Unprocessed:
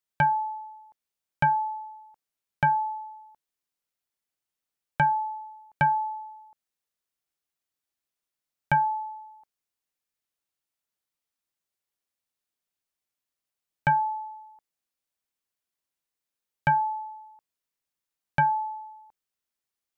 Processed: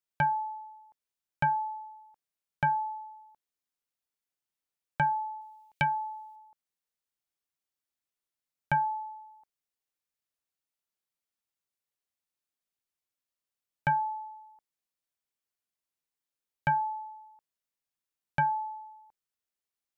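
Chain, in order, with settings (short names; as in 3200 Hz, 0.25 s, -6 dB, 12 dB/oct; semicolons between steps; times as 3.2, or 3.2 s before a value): 5.41–6.36 resonant high shelf 1900 Hz +8.5 dB, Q 1.5; gain -4.5 dB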